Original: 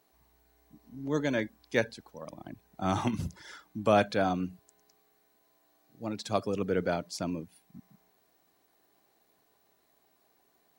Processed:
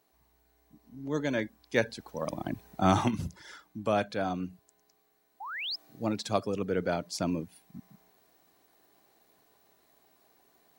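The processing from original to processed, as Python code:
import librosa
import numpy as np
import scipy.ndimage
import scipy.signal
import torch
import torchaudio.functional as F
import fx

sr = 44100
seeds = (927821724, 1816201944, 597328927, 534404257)

y = fx.spec_paint(x, sr, seeds[0], shape='rise', start_s=5.4, length_s=0.36, low_hz=740.0, high_hz=5400.0, level_db=-40.0)
y = fx.rider(y, sr, range_db=10, speed_s=0.5)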